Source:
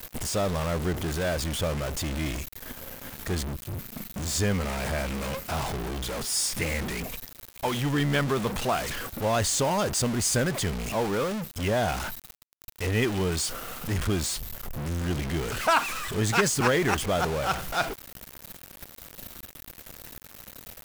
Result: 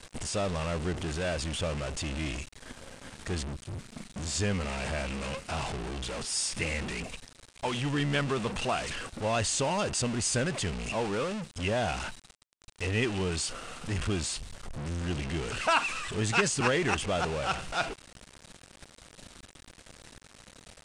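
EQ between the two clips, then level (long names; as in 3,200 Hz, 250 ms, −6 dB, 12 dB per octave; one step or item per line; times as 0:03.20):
elliptic low-pass filter 9,100 Hz, stop band 80 dB
dynamic equaliser 2,700 Hz, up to +8 dB, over −54 dBFS, Q 7.9
−3.0 dB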